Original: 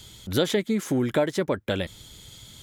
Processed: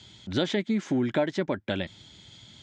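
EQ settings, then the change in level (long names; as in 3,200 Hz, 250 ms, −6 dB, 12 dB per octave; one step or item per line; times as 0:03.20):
high-frequency loss of the air 110 metres
loudspeaker in its box 110–7,800 Hz, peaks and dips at 140 Hz −3 dB, 470 Hz −9 dB, 1,200 Hz −6 dB
0.0 dB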